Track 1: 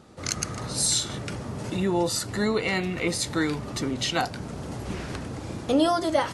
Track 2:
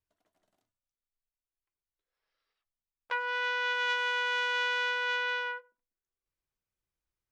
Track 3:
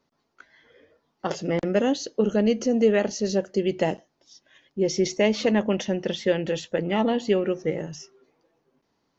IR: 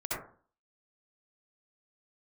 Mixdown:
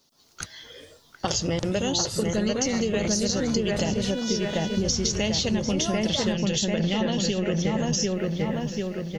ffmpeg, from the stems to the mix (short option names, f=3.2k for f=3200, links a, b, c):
-filter_complex "[0:a]volume=-13.5dB[a];[1:a]volume=-20dB[b];[2:a]volume=1dB,asplit=3[c][d][e];[d]volume=-10.5dB[f];[e]apad=whole_len=279320[g];[a][g]sidechaingate=range=-33dB:threshold=-48dB:ratio=16:detection=peak[h];[b][c]amix=inputs=2:normalize=0,aexciter=amount=5.8:drive=4.2:freq=3k,acompressor=threshold=-31dB:ratio=3,volume=0dB[i];[f]aecho=0:1:742|1484|2226|2968|3710|4452|5194|5936:1|0.54|0.292|0.157|0.085|0.0459|0.0248|0.0134[j];[h][i][j]amix=inputs=3:normalize=0,dynaudnorm=f=140:g=3:m=8dB,asubboost=boost=6.5:cutoff=130,acompressor=threshold=-21dB:ratio=6"